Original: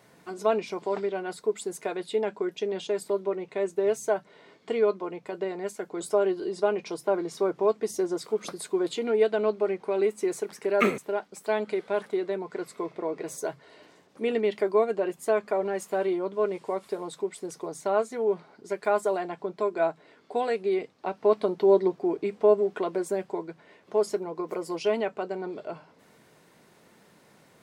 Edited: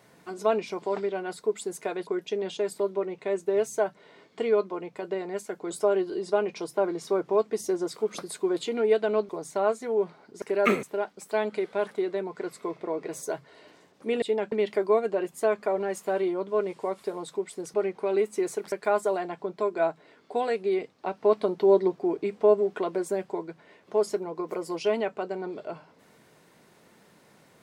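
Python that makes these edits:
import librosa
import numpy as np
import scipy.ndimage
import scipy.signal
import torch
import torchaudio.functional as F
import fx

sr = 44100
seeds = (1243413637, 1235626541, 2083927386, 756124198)

y = fx.edit(x, sr, fx.move(start_s=2.07, length_s=0.3, to_s=14.37),
    fx.swap(start_s=9.59, length_s=0.98, other_s=17.59, other_length_s=1.13), tone=tone)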